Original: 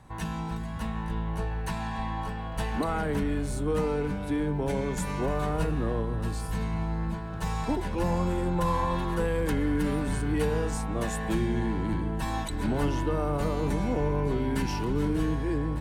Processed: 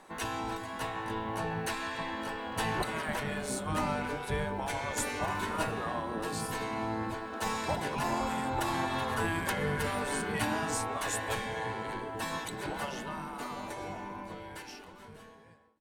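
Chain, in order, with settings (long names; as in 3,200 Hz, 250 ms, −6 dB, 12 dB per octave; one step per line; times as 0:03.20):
fade-out on the ending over 4.90 s
gate on every frequency bin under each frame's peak −10 dB weak
level +4 dB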